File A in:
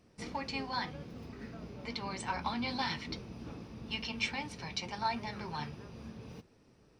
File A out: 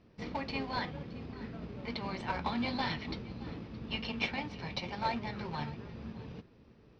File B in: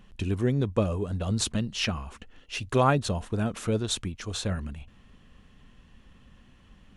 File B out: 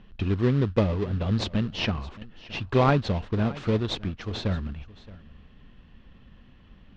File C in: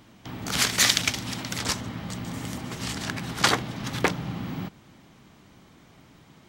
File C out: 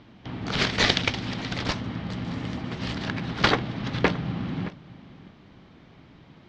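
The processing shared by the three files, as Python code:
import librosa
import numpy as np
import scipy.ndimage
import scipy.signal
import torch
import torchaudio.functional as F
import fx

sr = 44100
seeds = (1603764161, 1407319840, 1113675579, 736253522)

p1 = fx.sample_hold(x, sr, seeds[0], rate_hz=1500.0, jitter_pct=20)
p2 = x + (p1 * 10.0 ** (-7.5 / 20.0))
p3 = scipy.signal.sosfilt(scipy.signal.butter(4, 4500.0, 'lowpass', fs=sr, output='sos'), p2)
y = p3 + 10.0 ** (-19.5 / 20.0) * np.pad(p3, (int(620 * sr / 1000.0), 0))[:len(p3)]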